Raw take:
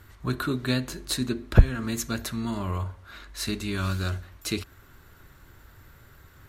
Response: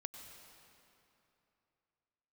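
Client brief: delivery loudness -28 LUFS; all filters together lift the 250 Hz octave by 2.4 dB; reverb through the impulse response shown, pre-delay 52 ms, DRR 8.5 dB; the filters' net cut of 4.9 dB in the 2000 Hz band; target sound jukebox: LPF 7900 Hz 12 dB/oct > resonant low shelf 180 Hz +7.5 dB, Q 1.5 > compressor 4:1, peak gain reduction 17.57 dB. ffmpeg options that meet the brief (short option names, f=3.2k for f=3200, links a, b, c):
-filter_complex "[0:a]equalizer=f=250:t=o:g=3,equalizer=f=2k:t=o:g=-7,asplit=2[a][b];[1:a]atrim=start_sample=2205,adelay=52[c];[b][c]afir=irnorm=-1:irlink=0,volume=-5.5dB[d];[a][d]amix=inputs=2:normalize=0,lowpass=7.9k,lowshelf=f=180:t=q:w=1.5:g=7.5,acompressor=threshold=-20dB:ratio=4,volume=-1dB"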